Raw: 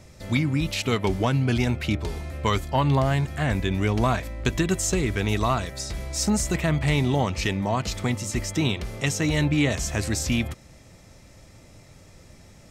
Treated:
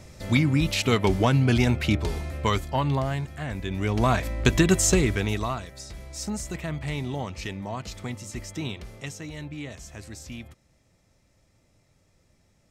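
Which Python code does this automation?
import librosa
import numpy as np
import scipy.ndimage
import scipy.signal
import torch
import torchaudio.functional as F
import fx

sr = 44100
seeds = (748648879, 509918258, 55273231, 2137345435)

y = fx.gain(x, sr, db=fx.line((2.14, 2.0), (3.51, -8.5), (4.29, 4.0), (4.94, 4.0), (5.63, -8.5), (8.88, -8.5), (9.31, -15.0)))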